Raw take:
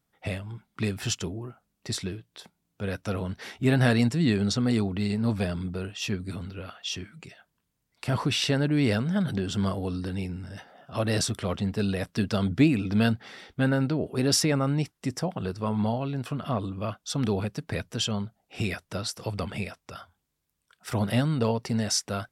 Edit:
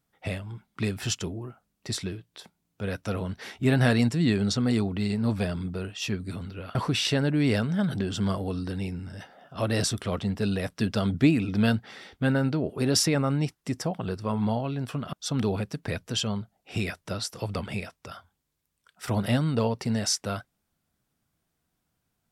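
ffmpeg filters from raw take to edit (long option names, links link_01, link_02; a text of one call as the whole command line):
ffmpeg -i in.wav -filter_complex "[0:a]asplit=3[link_01][link_02][link_03];[link_01]atrim=end=6.752[link_04];[link_02]atrim=start=8.118:end=16.502[link_05];[link_03]atrim=start=16.968[link_06];[link_04][link_05]acrossfade=duration=0.004:curve1=hsin:curve2=hsin[link_07];[link_07][link_06]acrossfade=duration=0.004:curve1=hsin:curve2=hsin" out.wav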